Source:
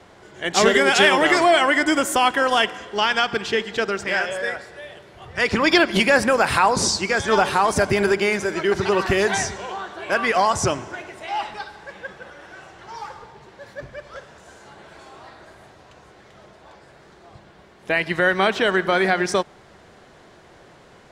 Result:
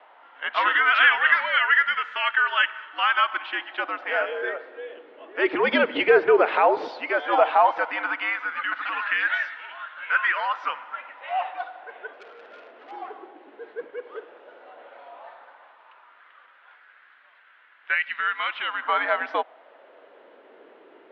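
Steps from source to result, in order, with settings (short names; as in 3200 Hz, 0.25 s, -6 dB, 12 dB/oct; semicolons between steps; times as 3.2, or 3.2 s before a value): 17.94–18.82 spectral gain 350–2000 Hz -7 dB; mistuned SSB -99 Hz 290–3300 Hz; LFO high-pass sine 0.13 Hz 380–1600 Hz; 12.13–12.91 core saturation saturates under 2300 Hz; gain -4.5 dB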